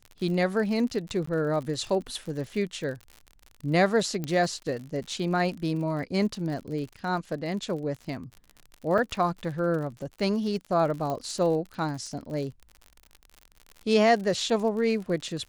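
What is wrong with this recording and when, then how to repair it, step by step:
surface crackle 58 per second −35 dBFS
0:01.26–0:01.27: drop-out 14 ms
0:04.24: click −18 dBFS
0:08.98: drop-out 3.5 ms
0:11.10: click −19 dBFS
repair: click removal
repair the gap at 0:01.26, 14 ms
repair the gap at 0:08.98, 3.5 ms

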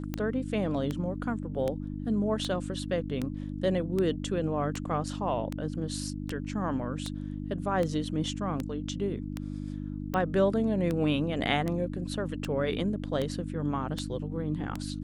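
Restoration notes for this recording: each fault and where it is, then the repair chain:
mains hum 50 Hz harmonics 6 −36 dBFS
scratch tick 78 rpm −18 dBFS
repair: click removal
hum removal 50 Hz, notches 6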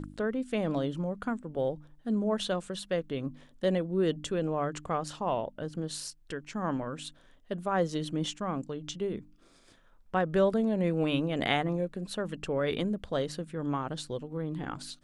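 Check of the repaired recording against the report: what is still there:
none of them is left

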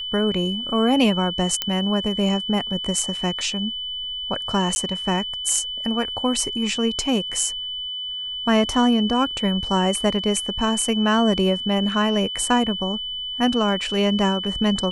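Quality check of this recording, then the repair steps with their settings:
whistle 3,000 Hz −27 dBFS
0:01.62: click −6 dBFS
0:04.75–0:04.76: drop-out 10 ms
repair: click removal
notch filter 3,000 Hz, Q 30
repair the gap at 0:04.75, 10 ms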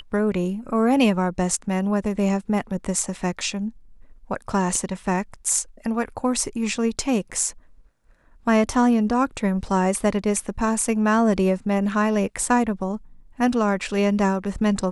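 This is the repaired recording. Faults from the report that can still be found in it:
none of them is left

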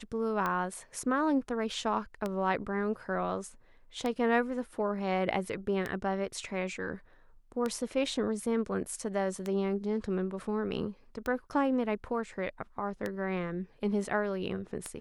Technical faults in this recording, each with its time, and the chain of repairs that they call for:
scratch tick 33 1/3 rpm −19 dBFS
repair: click removal

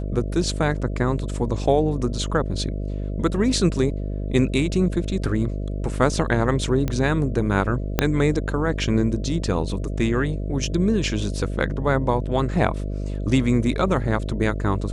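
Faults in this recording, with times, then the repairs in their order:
mains buzz 50 Hz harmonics 13 −27 dBFS
0:06.88: click −12 dBFS
0:07.99: click −3 dBFS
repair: click removal
hum removal 50 Hz, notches 13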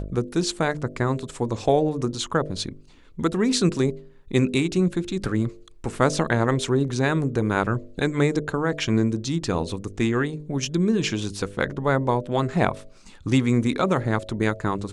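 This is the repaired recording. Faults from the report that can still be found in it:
0:07.99: click

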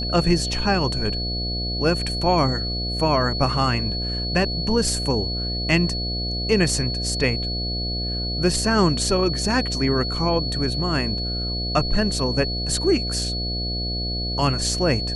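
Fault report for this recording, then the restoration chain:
mains buzz 60 Hz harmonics 12 −28 dBFS
whistle 4,400 Hz −27 dBFS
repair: hum removal 60 Hz, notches 12
notch filter 4,400 Hz, Q 30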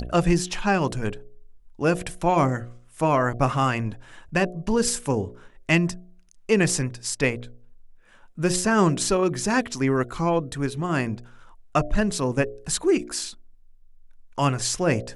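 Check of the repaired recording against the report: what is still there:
none of them is left

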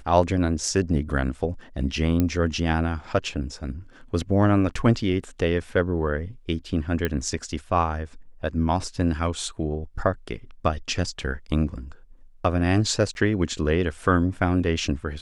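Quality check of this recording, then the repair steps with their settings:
0:02.20: click −10 dBFS
0:07.05: click −12 dBFS
0:13.14–0:13.15: drop-out 11 ms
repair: click removal
repair the gap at 0:13.14, 11 ms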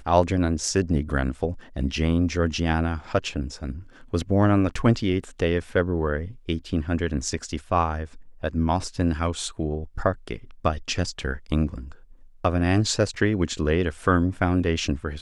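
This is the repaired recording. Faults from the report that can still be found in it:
0:02.20: click

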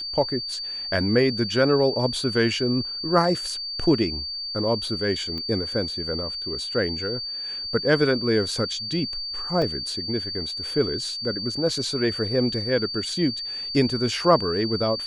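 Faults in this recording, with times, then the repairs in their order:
whistle 4,600 Hz −29 dBFS
0:05.38: click −21 dBFS
0:09.62: drop-out 3.5 ms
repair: click removal
notch filter 4,600 Hz, Q 30
repair the gap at 0:09.62, 3.5 ms

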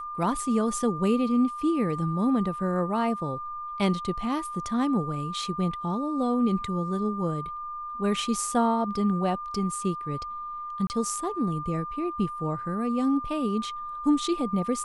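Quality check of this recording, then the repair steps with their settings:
whistle 1,200 Hz −33 dBFS
0:10.87–0:10.90: drop-out 29 ms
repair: notch filter 1,200 Hz, Q 30
repair the gap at 0:10.87, 29 ms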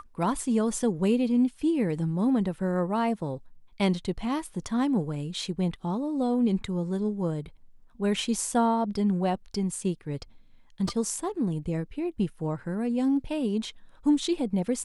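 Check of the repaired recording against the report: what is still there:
none of them is left

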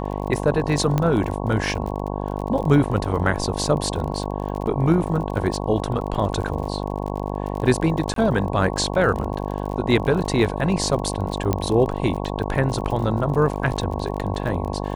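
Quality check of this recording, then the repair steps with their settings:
mains buzz 50 Hz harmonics 22 −27 dBFS
surface crackle 35 per second −29 dBFS
0:00.98: click −9 dBFS
0:08.14–0:08.16: drop-out 23 ms
0:11.53: click −8 dBFS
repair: click removal
hum removal 50 Hz, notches 22
repair the gap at 0:08.14, 23 ms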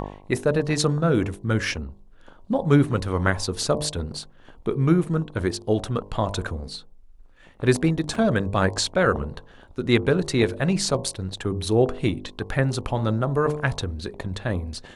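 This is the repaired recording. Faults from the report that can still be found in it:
0:11.53: click

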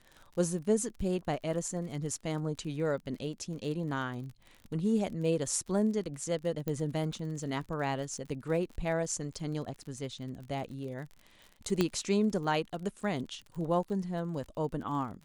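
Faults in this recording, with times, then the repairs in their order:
surface crackle 38 per second −41 dBFS
0:06.68: click −21 dBFS
0:11.81: click −14 dBFS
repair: click removal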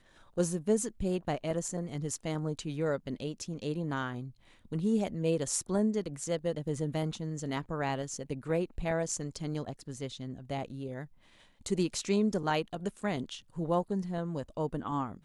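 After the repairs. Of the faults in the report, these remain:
0:06.68: click

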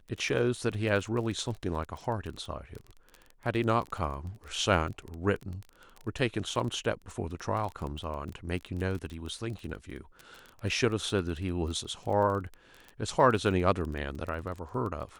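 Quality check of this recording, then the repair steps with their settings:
surface crackle 21 per second −35 dBFS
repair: click removal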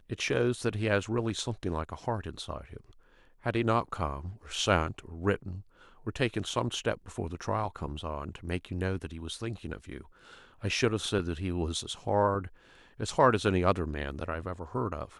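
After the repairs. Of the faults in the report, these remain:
none of them is left

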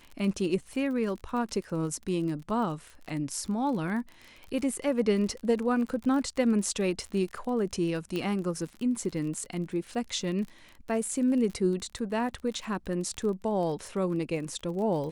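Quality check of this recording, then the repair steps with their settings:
surface crackle 35 per second −36 dBFS
0:08.16: click −20 dBFS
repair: click removal

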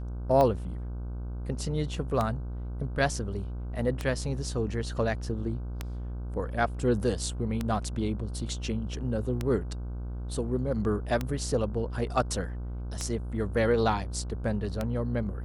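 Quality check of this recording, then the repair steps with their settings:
mains buzz 60 Hz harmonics 26 −35 dBFS
scratch tick 33 1/3 rpm −15 dBFS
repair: click removal
hum removal 60 Hz, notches 26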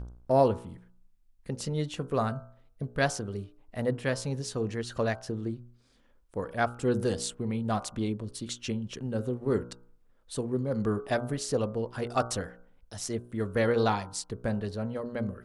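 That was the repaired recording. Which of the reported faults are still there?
none of them is left

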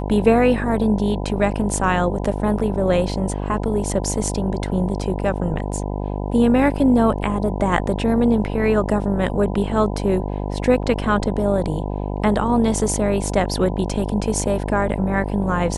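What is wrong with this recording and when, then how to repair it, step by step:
mains buzz 50 Hz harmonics 20 −25 dBFS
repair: hum removal 50 Hz, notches 20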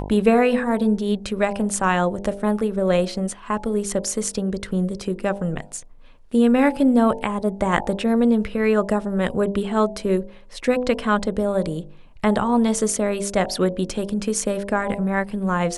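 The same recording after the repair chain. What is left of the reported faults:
none of them is left

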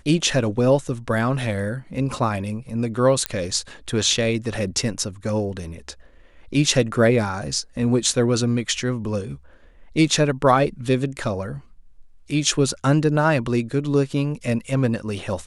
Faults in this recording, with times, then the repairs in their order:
0:03.26: click −5 dBFS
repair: click removal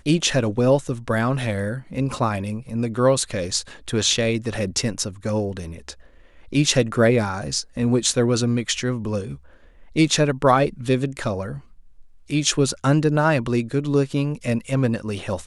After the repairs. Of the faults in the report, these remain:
none of them is left

